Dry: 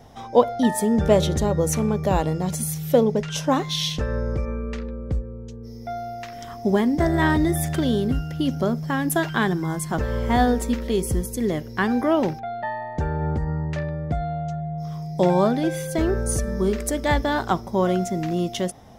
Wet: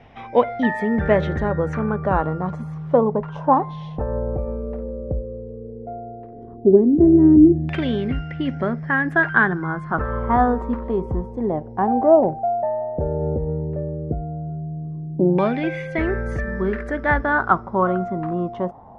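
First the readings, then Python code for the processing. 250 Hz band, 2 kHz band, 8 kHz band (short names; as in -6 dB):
+3.0 dB, +6.5 dB, under -25 dB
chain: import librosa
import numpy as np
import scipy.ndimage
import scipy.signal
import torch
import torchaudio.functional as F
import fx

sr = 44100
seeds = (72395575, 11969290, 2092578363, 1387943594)

y = fx.high_shelf(x, sr, hz=11000.0, db=-4.5)
y = fx.filter_lfo_lowpass(y, sr, shape='saw_down', hz=0.13, low_hz=290.0, high_hz=2500.0, q=4.4)
y = F.gain(torch.from_numpy(y), -1.0).numpy()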